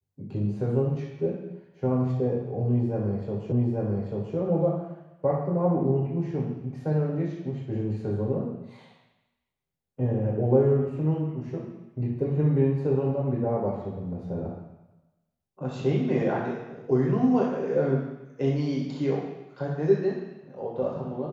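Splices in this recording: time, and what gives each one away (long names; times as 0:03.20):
0:03.52: the same again, the last 0.84 s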